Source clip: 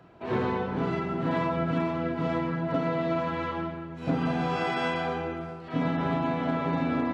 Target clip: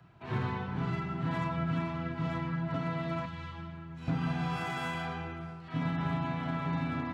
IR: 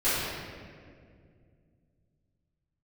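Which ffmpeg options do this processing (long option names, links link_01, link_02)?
-filter_complex "[0:a]equalizer=frequency=125:width_type=o:width=1:gain=8,equalizer=frequency=250:width_type=o:width=1:gain=-5,equalizer=frequency=500:width_type=o:width=1:gain=-11,asettb=1/sr,asplit=3[link_01][link_02][link_03];[link_01]atrim=end=3.254[link_04];[link_02]atrim=start=3.25:end=4.08,asetpts=PTS-STARTPTS,afade=type=in:duration=0.004:curve=qsin,afade=type=out:start_time=0.826:duration=0.004:curve=qsin,acrossover=split=150|3000[link_05][link_06][link_07];[link_06]acompressor=threshold=-41dB:ratio=6[link_08];[link_05][link_08][link_07]amix=inputs=3:normalize=0[link_09];[link_03]atrim=start=4.076[link_10];[link_04][link_09]acrossfade=duration=0.004:curve1=hsin:curve2=qsin[link_11];[link_11][link_10]acrossfade=duration=0.004:curve1=qsin:curve2=hsin,acrossover=split=260|1800[link_12][link_13][link_14];[link_14]asoftclip=type=hard:threshold=-39dB[link_15];[link_12][link_13][link_15]amix=inputs=3:normalize=0,volume=-3.5dB"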